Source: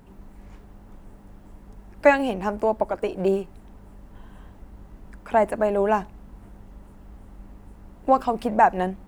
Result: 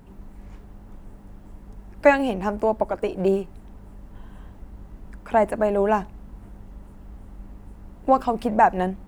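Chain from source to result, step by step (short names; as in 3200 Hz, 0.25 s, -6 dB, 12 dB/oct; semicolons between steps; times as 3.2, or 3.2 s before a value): low shelf 240 Hz +3.5 dB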